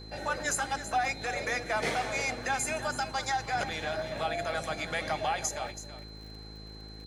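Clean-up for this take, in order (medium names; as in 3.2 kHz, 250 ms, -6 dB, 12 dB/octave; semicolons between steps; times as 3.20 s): de-click; de-hum 53.2 Hz, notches 9; band-stop 4.1 kHz, Q 30; inverse comb 328 ms -12 dB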